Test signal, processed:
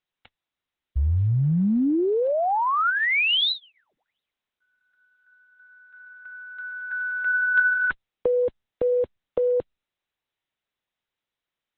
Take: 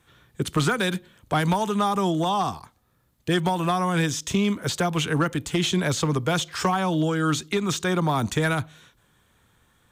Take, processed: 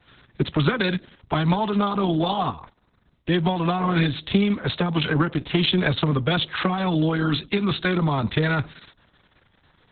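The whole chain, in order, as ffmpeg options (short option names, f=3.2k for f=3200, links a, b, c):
-filter_complex "[0:a]acrossover=split=240|3000[a][b][c];[b]acompressor=threshold=-24dB:ratio=8[d];[a][d][c]amix=inputs=3:normalize=0,volume=4dB" -ar 48000 -c:a libopus -b:a 6k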